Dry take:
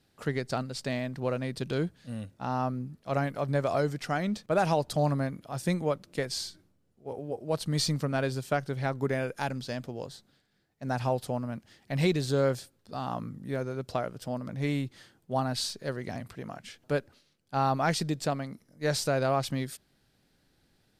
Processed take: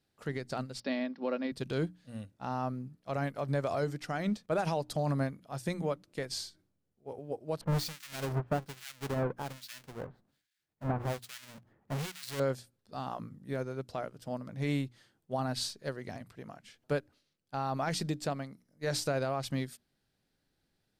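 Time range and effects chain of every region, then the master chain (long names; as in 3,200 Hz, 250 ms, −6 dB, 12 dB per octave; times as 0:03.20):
0:00.80–0:01.52: Chebyshev band-pass filter 190–5,400 Hz, order 5 + bass and treble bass +5 dB, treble +1 dB + comb filter 3.6 ms, depth 35%
0:07.61–0:12.40: each half-wave held at its own peak + downward compressor 2.5 to 1, threshold −25 dBFS + two-band tremolo in antiphase 1.2 Hz, depth 100%, crossover 1,600 Hz
whole clip: mains-hum notches 60/120/180/240/300 Hz; brickwall limiter −21.5 dBFS; expander for the loud parts 1.5 to 1, over −46 dBFS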